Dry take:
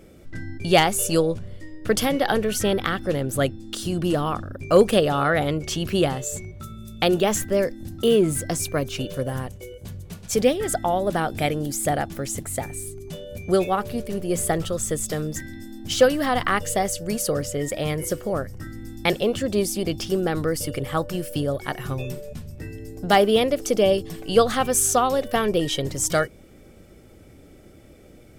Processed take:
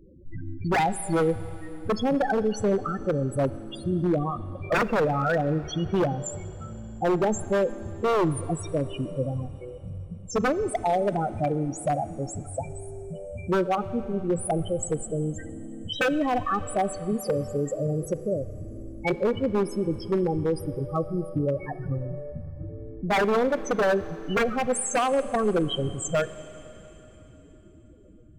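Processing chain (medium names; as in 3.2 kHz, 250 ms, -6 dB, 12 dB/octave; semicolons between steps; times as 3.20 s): loudest bins only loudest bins 8; wavefolder -17 dBFS; Schroeder reverb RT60 3.8 s, combs from 29 ms, DRR 14.5 dB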